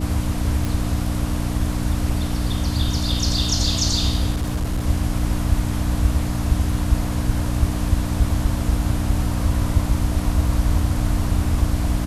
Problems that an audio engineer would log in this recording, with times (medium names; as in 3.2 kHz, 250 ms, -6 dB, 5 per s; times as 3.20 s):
hum 60 Hz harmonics 5 -25 dBFS
0.65 s: pop
4.33–4.87 s: clipped -18.5 dBFS